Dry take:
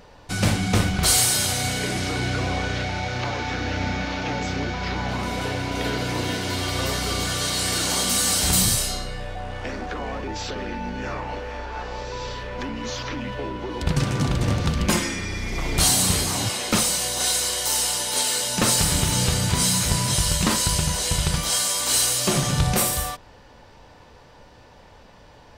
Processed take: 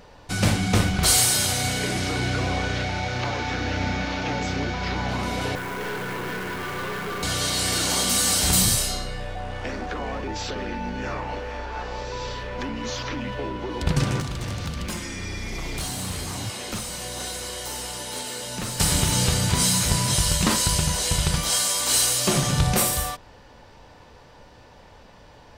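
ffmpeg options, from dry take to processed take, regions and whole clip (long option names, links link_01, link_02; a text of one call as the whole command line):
ffmpeg -i in.wav -filter_complex "[0:a]asettb=1/sr,asplit=3[link_01][link_02][link_03];[link_01]atrim=end=5.554[link_04];[link_02]atrim=start=5.55:end=7.23,asetpts=PTS-STARTPTS,afade=type=in:duration=0.004:curve=qsin,afade=type=out:start_time=1.676:duration=0.004:curve=qsin,highpass=150,equalizer=frequency=170:width_type=q:width=4:gain=7,equalizer=frequency=280:width_type=q:width=4:gain=-7,equalizer=frequency=410:width_type=q:width=4:gain=7,equalizer=frequency=650:width_type=q:width=4:gain=-7,equalizer=frequency=1100:width_type=q:width=4:gain=6,equalizer=frequency=1600:width_type=q:width=4:gain=7,lowpass=frequency=2500:width=0.5412,lowpass=frequency=2500:width=1.3066,aeval=exprs='(tanh(22.4*val(0)+0.35)-tanh(0.35))/22.4':channel_layout=same,acrusher=bits=2:mode=log:mix=0:aa=0.000001[link_05];[link_03]atrim=start=7.226[link_06];[link_04][link_05]acrossfade=duration=0.004:curve1=hsin:curve2=qsin[link_07];[link_07][link_06]acrossfade=duration=0.004:curve1=qsin:curve2=hsin,asettb=1/sr,asplit=3[link_08][link_09][link_10];[link_08]atrim=end=14.204[link_11];[link_09]atrim=start=14.2:end=18.8,asetpts=PTS-STARTPTS,afade=type=in:duration=0.004:curve=qsin,afade=type=out:start_time=4.596:duration=0.004:curve=qsin,acrossover=split=120|500|1000|2900[link_12][link_13][link_14][link_15][link_16];[link_12]acompressor=threshold=-32dB:ratio=3[link_17];[link_13]acompressor=threshold=-37dB:ratio=3[link_18];[link_14]acompressor=threshold=-46dB:ratio=3[link_19];[link_15]acompressor=threshold=-41dB:ratio=3[link_20];[link_16]acompressor=threshold=-37dB:ratio=3[link_21];[link_17][link_18][link_19][link_20][link_21]amix=inputs=5:normalize=0,volume=24dB,asoftclip=hard,volume=-24dB[link_22];[link_10]atrim=start=18.796[link_23];[link_11][link_22]acrossfade=duration=0.004:curve1=hsin:curve2=qsin[link_24];[link_24][link_23]acrossfade=duration=0.004:curve1=qsin:curve2=hsin" out.wav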